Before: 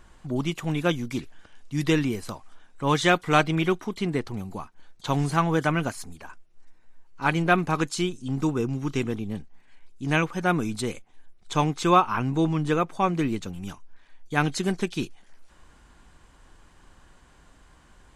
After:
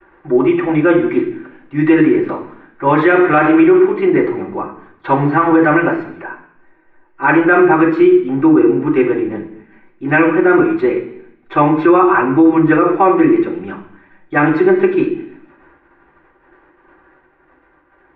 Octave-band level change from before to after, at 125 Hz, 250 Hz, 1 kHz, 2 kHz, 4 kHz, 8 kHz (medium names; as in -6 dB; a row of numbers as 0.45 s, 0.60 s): +3.5 dB, +15.0 dB, +10.5 dB, +12.0 dB, no reading, under -30 dB